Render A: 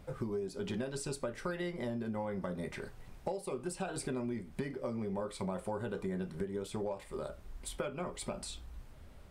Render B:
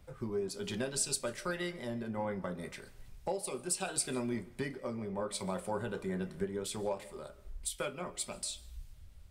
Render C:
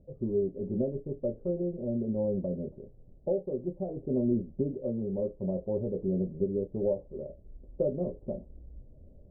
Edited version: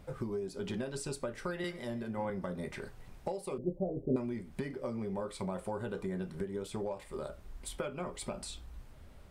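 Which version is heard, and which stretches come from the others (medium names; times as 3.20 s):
A
1.64–2.30 s: from B
3.58–4.16 s: from C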